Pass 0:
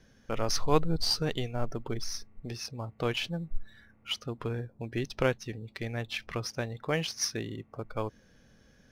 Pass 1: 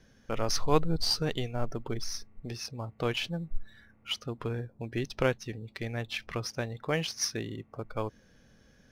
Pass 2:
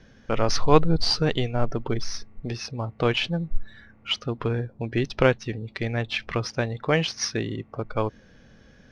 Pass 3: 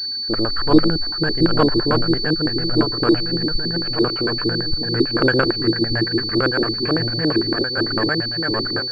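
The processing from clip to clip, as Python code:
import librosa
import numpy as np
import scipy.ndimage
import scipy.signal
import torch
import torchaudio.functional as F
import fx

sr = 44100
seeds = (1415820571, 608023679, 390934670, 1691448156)

y1 = x
y2 = scipy.signal.sosfilt(scipy.signal.butter(2, 4600.0, 'lowpass', fs=sr, output='sos'), y1)
y2 = y2 * librosa.db_to_amplitude(8.0)
y3 = fx.reverse_delay_fb(y2, sr, ms=592, feedback_pct=67, wet_db=0)
y3 = fx.filter_lfo_lowpass(y3, sr, shape='square', hz=8.9, low_hz=330.0, high_hz=1600.0, q=7.1)
y3 = fx.pwm(y3, sr, carrier_hz=4500.0)
y3 = y3 * librosa.db_to_amplitude(-2.5)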